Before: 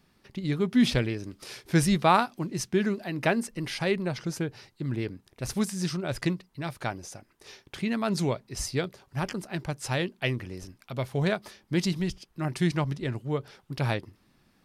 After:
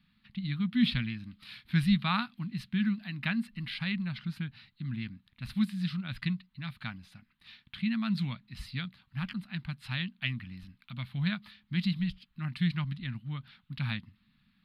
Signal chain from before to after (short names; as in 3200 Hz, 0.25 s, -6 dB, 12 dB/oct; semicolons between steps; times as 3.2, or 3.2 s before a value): EQ curve 120 Hz 0 dB, 220 Hz +6 dB, 410 Hz -30 dB, 1200 Hz -2 dB, 2700 Hz +4 dB, 4100 Hz +5 dB, 6000 Hz -24 dB, 13000 Hz -9 dB; gain -5.5 dB